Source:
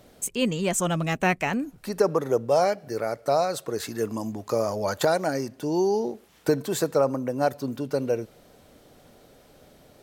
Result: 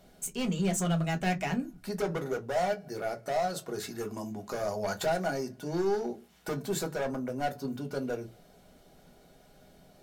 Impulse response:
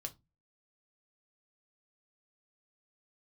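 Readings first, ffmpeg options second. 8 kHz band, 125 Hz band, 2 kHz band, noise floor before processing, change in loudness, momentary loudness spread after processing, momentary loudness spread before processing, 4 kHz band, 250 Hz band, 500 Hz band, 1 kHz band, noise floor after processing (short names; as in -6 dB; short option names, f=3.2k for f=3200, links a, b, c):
-6.0 dB, -3.0 dB, -5.5 dB, -55 dBFS, -6.5 dB, 9 LU, 8 LU, -5.5 dB, -5.0 dB, -8.0 dB, -6.0 dB, -59 dBFS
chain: -filter_complex "[0:a]asoftclip=type=hard:threshold=-21.5dB[a];[1:a]atrim=start_sample=2205,asetrate=57330,aresample=44100[b];[a][b]afir=irnorm=-1:irlink=0"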